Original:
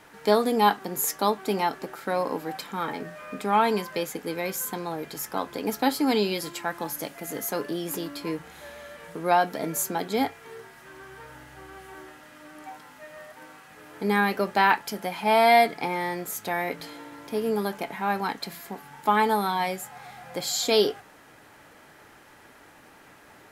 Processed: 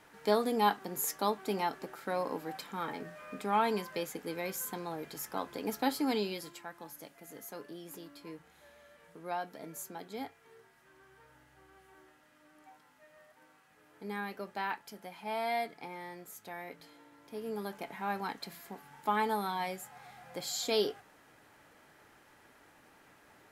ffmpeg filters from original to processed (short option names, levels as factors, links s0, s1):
-af "volume=0.944,afade=t=out:st=6:d=0.69:silence=0.375837,afade=t=in:st=17.2:d=0.77:silence=0.446684"